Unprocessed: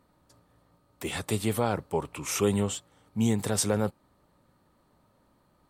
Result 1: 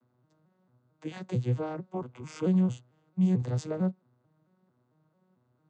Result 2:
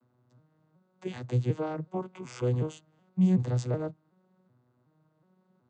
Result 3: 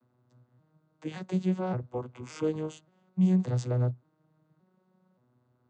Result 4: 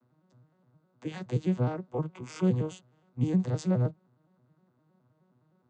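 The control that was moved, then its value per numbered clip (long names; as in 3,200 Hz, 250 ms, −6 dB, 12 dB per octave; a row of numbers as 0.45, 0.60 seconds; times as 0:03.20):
vocoder with an arpeggio as carrier, a note every: 223, 373, 574, 104 milliseconds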